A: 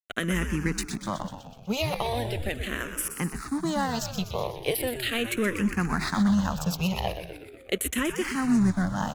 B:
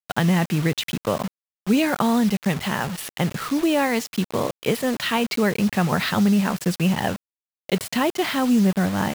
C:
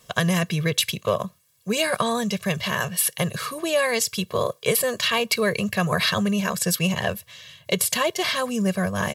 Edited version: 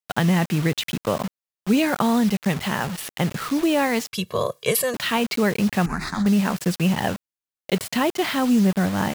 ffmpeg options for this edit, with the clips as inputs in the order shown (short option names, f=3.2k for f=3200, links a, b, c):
-filter_complex "[1:a]asplit=3[a][b][c];[a]atrim=end=4.132[d];[2:a]atrim=start=4.128:end=4.942[e];[b]atrim=start=4.938:end=5.862[f];[0:a]atrim=start=5.858:end=6.262[g];[c]atrim=start=6.258[h];[d][e]acrossfade=d=0.004:c1=hsin:c2=hsin[i];[i][f]acrossfade=d=0.004:c1=hsin:c2=hsin[j];[j][g]acrossfade=d=0.004:c1=hsin:c2=hsin[k];[k][h]acrossfade=d=0.004:c1=hsin:c2=hsin"